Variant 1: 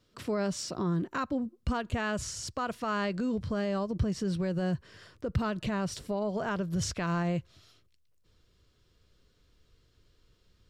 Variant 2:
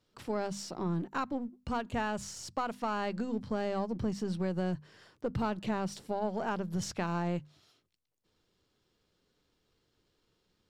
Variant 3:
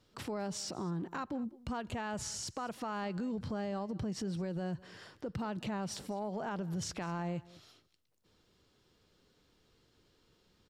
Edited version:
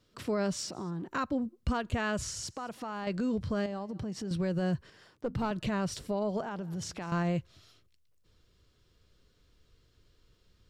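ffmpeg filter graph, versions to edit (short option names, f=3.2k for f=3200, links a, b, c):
-filter_complex "[2:a]asplit=4[a][b][c][d];[0:a]asplit=6[e][f][g][h][i][j];[e]atrim=end=0.672[k];[a]atrim=start=0.668:end=1.082[l];[f]atrim=start=1.078:end=2.472[m];[b]atrim=start=2.468:end=3.072[n];[g]atrim=start=3.068:end=3.662[o];[c]atrim=start=3.658:end=4.312[p];[h]atrim=start=4.308:end=4.902[q];[1:a]atrim=start=4.898:end=5.512[r];[i]atrim=start=5.508:end=6.412[s];[d]atrim=start=6.408:end=7.122[t];[j]atrim=start=7.118[u];[k][l]acrossfade=d=0.004:c1=hsin:c2=hsin[v];[v][m]acrossfade=d=0.004:c1=hsin:c2=hsin[w];[w][n]acrossfade=d=0.004:c1=hsin:c2=hsin[x];[x][o]acrossfade=d=0.004:c1=hsin:c2=hsin[y];[y][p]acrossfade=d=0.004:c1=hsin:c2=hsin[z];[z][q]acrossfade=d=0.004:c1=hsin:c2=hsin[aa];[aa][r]acrossfade=d=0.004:c1=hsin:c2=hsin[ab];[ab][s]acrossfade=d=0.004:c1=hsin:c2=hsin[ac];[ac][t]acrossfade=d=0.004:c1=hsin:c2=hsin[ad];[ad][u]acrossfade=d=0.004:c1=hsin:c2=hsin"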